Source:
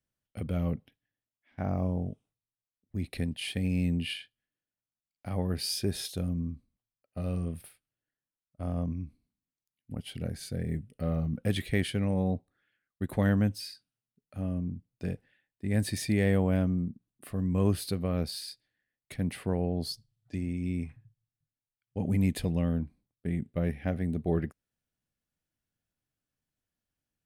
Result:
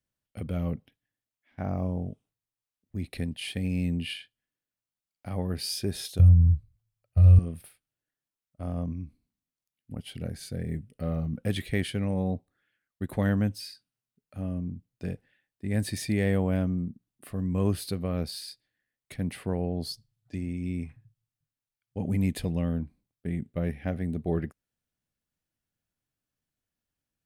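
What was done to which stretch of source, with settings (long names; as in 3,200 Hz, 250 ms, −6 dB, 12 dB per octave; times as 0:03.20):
0:06.19–0:07.39: low shelf with overshoot 160 Hz +13.5 dB, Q 3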